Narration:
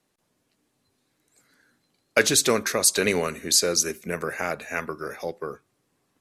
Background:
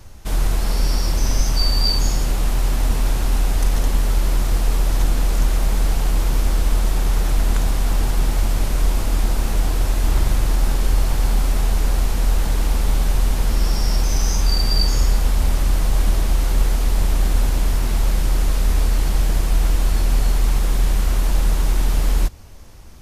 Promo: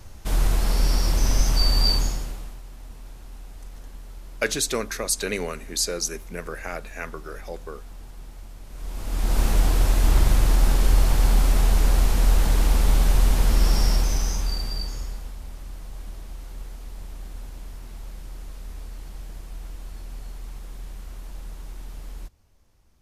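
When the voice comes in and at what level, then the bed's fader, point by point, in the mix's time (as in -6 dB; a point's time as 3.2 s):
2.25 s, -5.0 dB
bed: 1.93 s -2 dB
2.63 s -23 dB
8.64 s -23 dB
9.39 s -0.5 dB
13.82 s -0.5 dB
15.4 s -20 dB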